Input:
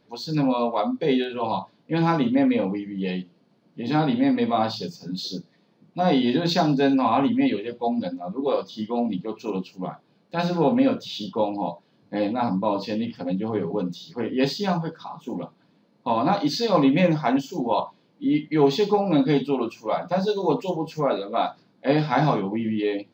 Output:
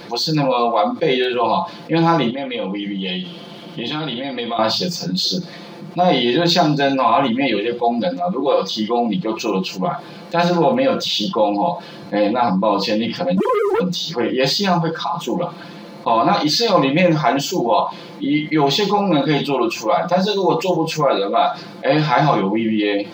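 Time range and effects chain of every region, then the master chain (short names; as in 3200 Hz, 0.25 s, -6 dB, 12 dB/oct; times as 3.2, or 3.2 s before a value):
2.3–4.59 bell 3200 Hz +12.5 dB 0.38 oct + compressor, threshold -35 dBFS
13.37–13.8 sine-wave speech + sample leveller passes 2
whole clip: low shelf 280 Hz -9 dB; comb 5.8 ms, depth 65%; fast leveller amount 50%; gain +3 dB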